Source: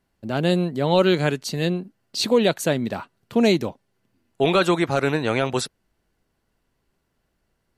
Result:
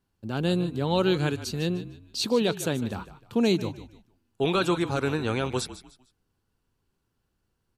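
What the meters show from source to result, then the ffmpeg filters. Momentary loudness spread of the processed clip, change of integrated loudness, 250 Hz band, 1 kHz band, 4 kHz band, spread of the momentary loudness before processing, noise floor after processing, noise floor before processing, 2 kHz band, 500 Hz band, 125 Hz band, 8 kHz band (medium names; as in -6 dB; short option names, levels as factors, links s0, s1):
11 LU, -5.5 dB, -4.5 dB, -6.0 dB, -4.5 dB, 11 LU, -77 dBFS, -73 dBFS, -6.5 dB, -6.5 dB, -3.0 dB, -4.5 dB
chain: -filter_complex "[0:a]equalizer=f=100:t=o:w=0.33:g=8,equalizer=f=630:t=o:w=0.33:g=-9,equalizer=f=2000:t=o:w=0.33:g=-8,asplit=4[s0][s1][s2][s3];[s1]adelay=151,afreqshift=-42,volume=0.2[s4];[s2]adelay=302,afreqshift=-84,volume=0.0638[s5];[s3]adelay=453,afreqshift=-126,volume=0.0204[s6];[s0][s4][s5][s6]amix=inputs=4:normalize=0,volume=0.596"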